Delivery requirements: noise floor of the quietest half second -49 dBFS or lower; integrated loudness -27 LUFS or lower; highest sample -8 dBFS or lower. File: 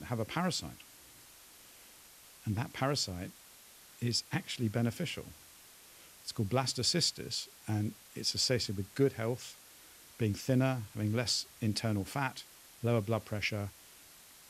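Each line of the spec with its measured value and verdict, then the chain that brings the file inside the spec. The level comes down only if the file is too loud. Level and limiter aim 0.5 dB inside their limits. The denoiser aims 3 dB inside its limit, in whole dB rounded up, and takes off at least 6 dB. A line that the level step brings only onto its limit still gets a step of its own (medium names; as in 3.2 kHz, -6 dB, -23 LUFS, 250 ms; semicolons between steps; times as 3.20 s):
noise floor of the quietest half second -57 dBFS: pass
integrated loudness -34.0 LUFS: pass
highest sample -15.0 dBFS: pass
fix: none needed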